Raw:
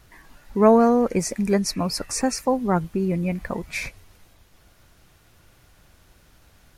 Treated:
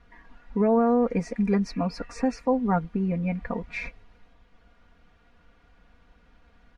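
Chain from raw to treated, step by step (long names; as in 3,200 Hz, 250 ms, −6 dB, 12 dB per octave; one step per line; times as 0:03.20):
low-pass filter 2,600 Hz 12 dB per octave
comb filter 4.2 ms, depth 92%
brickwall limiter −8.5 dBFS, peak gain reduction 7.5 dB
level −5 dB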